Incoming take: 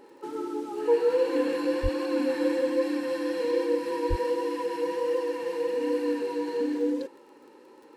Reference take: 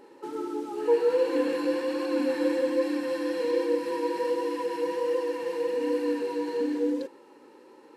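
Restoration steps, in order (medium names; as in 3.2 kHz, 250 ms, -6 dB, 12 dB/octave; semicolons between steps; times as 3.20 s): de-click; 1.82–1.94 s: high-pass 140 Hz 24 dB/octave; 4.09–4.21 s: high-pass 140 Hz 24 dB/octave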